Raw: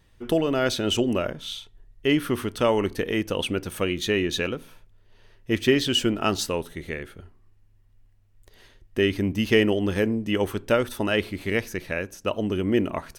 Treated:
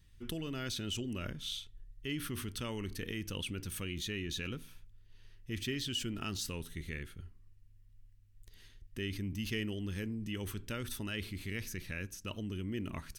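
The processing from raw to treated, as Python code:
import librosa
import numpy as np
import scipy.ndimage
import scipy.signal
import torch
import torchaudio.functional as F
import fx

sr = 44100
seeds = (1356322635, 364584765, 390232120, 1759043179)

p1 = fx.tone_stack(x, sr, knobs='6-0-2')
p2 = fx.over_compress(p1, sr, threshold_db=-50.0, ratio=-1.0)
p3 = p1 + F.gain(torch.from_numpy(p2), 0.0).numpy()
y = F.gain(torch.from_numpy(p3), 2.0).numpy()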